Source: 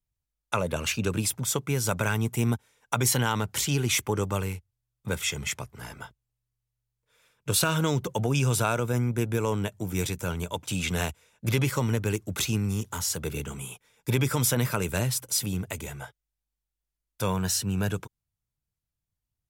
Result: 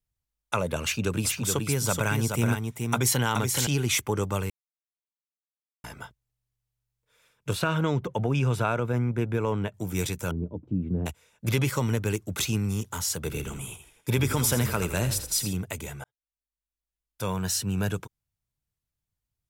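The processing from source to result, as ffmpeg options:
-filter_complex "[0:a]asettb=1/sr,asplit=3[s0][s1][s2];[s0]atrim=end=0.824[s3];[s1]atrim=start=0.82:end=3.67,asetpts=PTS-STARTPTS,afade=t=in:d=0.004:c=qsin,afade=t=out:st=2.846:d=0.004:c=qsin,aecho=1:1:426:0.562,atrim=end_sample=125685[s4];[s2]atrim=start=3.666[s5];[s3][s4]acrossfade=d=0.004:c1=hsin:c2=qsin[s6];[s6][s5]acrossfade=d=0.004:c1=qsin:c2=hsin,asettb=1/sr,asplit=3[s7][s8][s9];[s7]atrim=end=7.534[s10];[s8]atrim=start=7.53:end=9.74,asetpts=PTS-STARTPTS,afade=t=in:d=0.004:c=qsin,afade=t=out:st=2.206:d=0.004:c=qsin,bass=f=250:g=0,treble=f=4000:g=-15[s11];[s9]atrim=start=9.736[s12];[s10][s11]acrossfade=d=0.004:c1=hsin:c2=qsin[s13];[s13][s12]acrossfade=d=0.004:c1=qsin:c2=hsin,asettb=1/sr,asplit=3[s14][s15][s16];[s14]atrim=end=10.314[s17];[s15]atrim=start=10.31:end=11.06,asetpts=PTS-STARTPTS,afade=t=in:d=0.004:c=qsin,afade=t=out:st=0.746:d=0.004:c=qsin,lowpass=f=300:t=q:w=2[s18];[s16]atrim=start=11.056[s19];[s17][s18]acrossfade=d=0.004:c1=hsin:c2=qsin[s20];[s20][s19]acrossfade=d=0.004:c1=qsin:c2=hsin,asettb=1/sr,asplit=3[s21][s22][s23];[s21]atrim=end=13.154[s24];[s22]atrim=start=13.15:end=15.53,asetpts=PTS-STARTPTS,afade=t=in:d=0.004:c=qsin,afade=t=out:st=2.376:d=0.004:c=qsin,asplit=5[s25][s26][s27][s28][s29];[s26]adelay=82,afreqshift=-31,volume=0.316[s30];[s27]adelay=164,afreqshift=-62,volume=0.133[s31];[s28]adelay=246,afreqshift=-93,volume=0.0556[s32];[s29]adelay=328,afreqshift=-124,volume=0.0234[s33];[s25][s30][s31][s32][s33]amix=inputs=5:normalize=0,atrim=end_sample=104958[s34];[s23]atrim=start=15.526[s35];[s24][s34]acrossfade=d=0.004:c1=hsin:c2=qsin[s36];[s36][s35]acrossfade=d=0.004:c1=qsin:c2=hsin,asplit=4[s37][s38][s39][s40];[s37]atrim=end=4.5,asetpts=PTS-STARTPTS,afade=t=out:st=4.496:d=0.004:c=hsin[s41];[s38]atrim=start=4.5:end=5.84,asetpts=PTS-STARTPTS,volume=0[s42];[s39]atrim=start=5.84:end=16.04,asetpts=PTS-STARTPTS,afade=t=in:d=0.004:c=hsin,afade=t=out:st=10.196:d=0.004:c=hsin[s43];[s40]atrim=start=16.04,asetpts=PTS-STARTPTS,afade=t=in:d=1.65[s44];[s41][s42][s43][s44]concat=n=4:v=0:a=1"

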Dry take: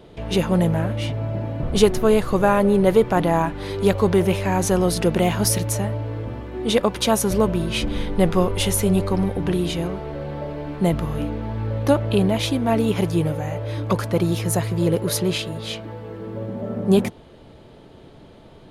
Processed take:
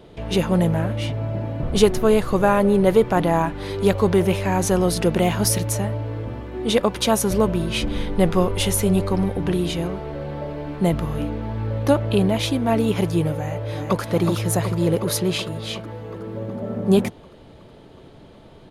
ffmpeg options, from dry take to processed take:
-filter_complex "[0:a]asplit=2[s0][s1];[s1]afade=t=in:st=13.34:d=0.01,afade=t=out:st=14:d=0.01,aecho=0:1:370|740|1110|1480|1850|2220|2590|2960|3330|3700|4070|4440:0.530884|0.371619|0.260133|0.182093|0.127465|0.0892257|0.062458|0.0437206|0.0306044|0.0214231|0.0149962|0.0104973[s2];[s0][s2]amix=inputs=2:normalize=0"

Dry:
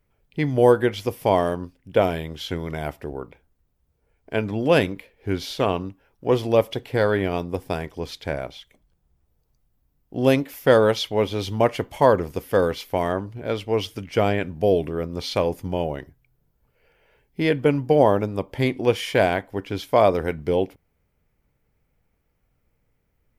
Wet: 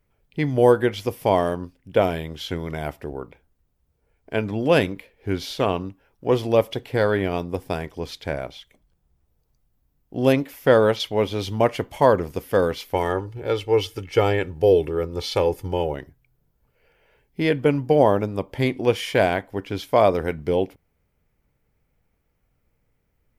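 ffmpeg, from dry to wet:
-filter_complex "[0:a]asettb=1/sr,asplit=3[s0][s1][s2];[s0]atrim=end=10.324[s3];[s1]atrim=start=10.32:end=11,asetpts=PTS-STARTPTS,afade=t=in:d=0.004:c=qsin,afade=t=out:st=0.676:d=0.004:c=qsin,acrossover=split=3300[s4][s5];[s5]acompressor=threshold=0.01:ratio=4:attack=1:release=60[s6];[s4][s6]amix=inputs=2:normalize=0[s7];[s2]atrim=start=10.996[s8];[s3][s7]acrossfade=d=0.004:c1=hsin:c2=qsin[s9];[s9][s8]acrossfade=d=0.004:c1=qsin:c2=hsin,asettb=1/sr,asplit=3[s10][s11][s12];[s10]atrim=end=12.944[s13];[s11]atrim=start=12.94:end=15.94,asetpts=PTS-STARTPTS,afade=t=in:d=0.004:c=qsin,afade=t=out:st=2.996:d=0.004:c=qsin,aecho=1:1:2.3:0.65,atrim=end_sample=132300[s14];[s12]atrim=start=15.936[s15];[s13][s14]acrossfade=d=0.004:c1=hsin:c2=qsin[s16];[s16][s15]acrossfade=d=0.004:c1=qsin:c2=hsin"

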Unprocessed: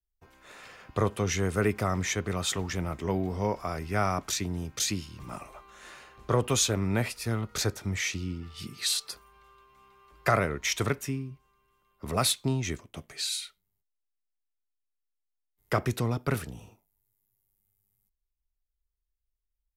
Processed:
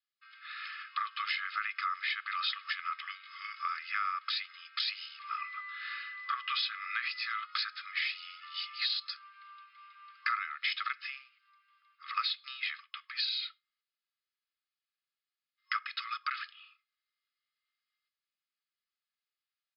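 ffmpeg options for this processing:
-filter_complex "[0:a]asettb=1/sr,asplit=3[s0][s1][s2];[s0]atrim=end=5.384[s3];[s1]atrim=start=5.38:end=7.39,asetpts=PTS-STARTPTS,afade=t=in:d=0.004:c=qsin,afade=t=out:st=2.006:d=0.004:c=qsin,aeval=exprs='val(0)+0.00316*sin(2*PI*2000*n/s)':c=same[s4];[s2]atrim=start=7.386[s5];[s3][s4]acrossfade=d=0.004:c1=hsin:c2=qsin[s6];[s6][s5]acrossfade=d=0.004:c1=qsin:c2=hsin,afftfilt=real='re*between(b*sr/4096,1100,5200)':imag='im*between(b*sr/4096,1100,5200)':win_size=4096:overlap=0.75,aecho=1:1:2.4:0.5,acompressor=threshold=0.0126:ratio=4,volume=2.11"

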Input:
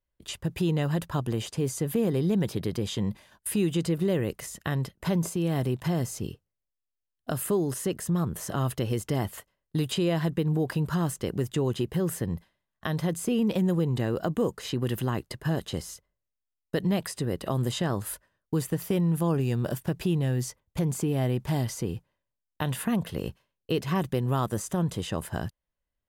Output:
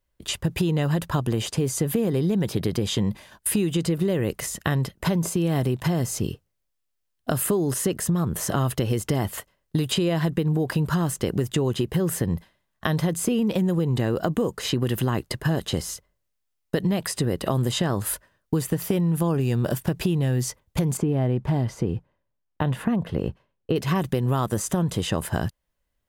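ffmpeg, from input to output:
-filter_complex "[0:a]asettb=1/sr,asplit=3[s0][s1][s2];[s0]atrim=end=20.974[s3];[s1]atrim=start=20.97:end=23.76,asetpts=PTS-STARTPTS,afade=t=in:d=0.004:c=qsin,afade=t=out:st=2.786:d=0.004:c=qsin,lowpass=f=1200:p=1[s4];[s2]atrim=start=23.756[s5];[s3][s4]acrossfade=d=0.004:c1=hsin:c2=qsin[s6];[s6][s5]acrossfade=d=0.004:c1=qsin:c2=hsin,acompressor=threshold=0.0398:ratio=6,volume=2.66"

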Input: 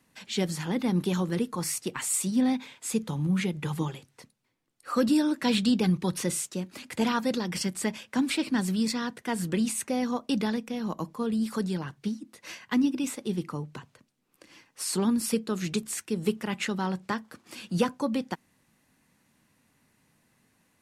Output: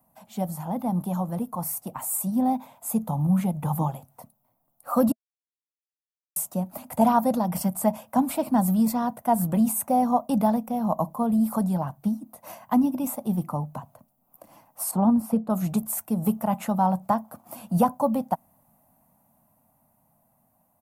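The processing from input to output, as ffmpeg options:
-filter_complex "[0:a]asettb=1/sr,asplit=3[s0][s1][s2];[s0]atrim=end=14.914[s3];[s1]atrim=start=14.91:end=15.5,asetpts=PTS-STARTPTS,afade=t=in:d=0.004:c=qsin,afade=t=out:st=0.586:d=0.004:c=qsin,lowpass=f=1400:p=1[s4];[s2]atrim=start=15.496[s5];[s3][s4]acrossfade=d=0.004:c1=hsin:c2=qsin[s6];[s6][s5]acrossfade=d=0.004:c1=qsin:c2=hsin,asplit=3[s7][s8][s9];[s7]atrim=end=5.12,asetpts=PTS-STARTPTS,afade=t=out:st=5.116:d=0.004:c=hsin[s10];[s8]atrim=start=5.12:end=6.36,asetpts=PTS-STARTPTS,volume=0[s11];[s9]atrim=start=6.36,asetpts=PTS-STARTPTS,afade=t=in:d=0.004:c=hsin[s12];[s10][s11][s12]concat=n=3:v=0:a=1,dynaudnorm=f=620:g=9:m=2,firequalizer=gain_entry='entry(230,0);entry(390,-15);entry(650,12);entry(1700,-16);entry(4200,-18);entry(7500,-9);entry(14000,15)':delay=0.05:min_phase=1"

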